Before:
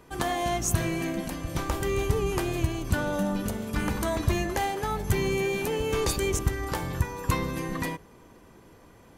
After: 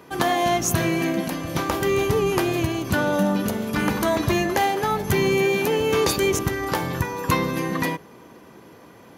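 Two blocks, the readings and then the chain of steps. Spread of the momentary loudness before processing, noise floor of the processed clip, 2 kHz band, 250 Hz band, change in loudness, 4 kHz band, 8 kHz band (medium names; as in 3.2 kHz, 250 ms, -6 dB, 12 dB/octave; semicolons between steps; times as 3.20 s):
5 LU, -47 dBFS, +7.5 dB, +7.0 dB, +6.0 dB, +7.0 dB, +4.0 dB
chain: high-pass 140 Hz 12 dB/octave; peaking EQ 8.2 kHz -8 dB 0.42 oct; trim +7.5 dB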